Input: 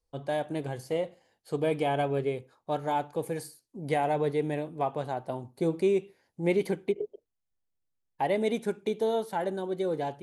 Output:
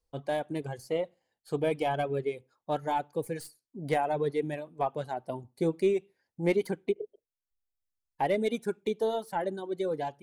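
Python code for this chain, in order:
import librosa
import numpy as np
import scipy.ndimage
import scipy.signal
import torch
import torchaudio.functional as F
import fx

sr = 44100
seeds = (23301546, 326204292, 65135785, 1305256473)

y = fx.tracing_dist(x, sr, depth_ms=0.027)
y = fx.dereverb_blind(y, sr, rt60_s=1.4)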